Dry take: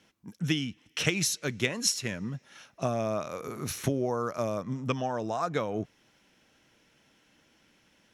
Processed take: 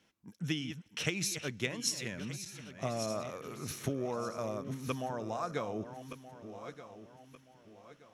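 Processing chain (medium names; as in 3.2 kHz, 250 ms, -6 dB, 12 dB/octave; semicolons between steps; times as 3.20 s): backward echo that repeats 613 ms, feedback 57%, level -10 dB; trim -6.5 dB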